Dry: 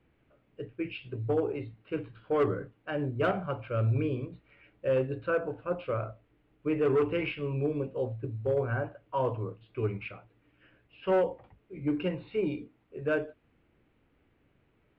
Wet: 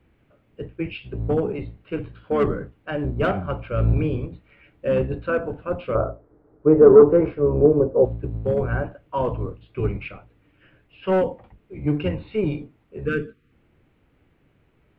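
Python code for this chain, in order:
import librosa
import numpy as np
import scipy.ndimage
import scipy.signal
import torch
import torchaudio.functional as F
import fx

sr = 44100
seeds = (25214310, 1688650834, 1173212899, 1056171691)

y = fx.octave_divider(x, sr, octaves=1, level_db=-1.0)
y = fx.curve_eq(y, sr, hz=(190.0, 270.0, 430.0, 1400.0, 2800.0, 4100.0), db=(0, 5, 11, 3, -24, -13), at=(5.95, 8.05))
y = fx.spec_box(y, sr, start_s=13.06, length_s=0.46, low_hz=510.0, high_hz=1100.0, gain_db=-25)
y = F.gain(torch.from_numpy(y), 5.5).numpy()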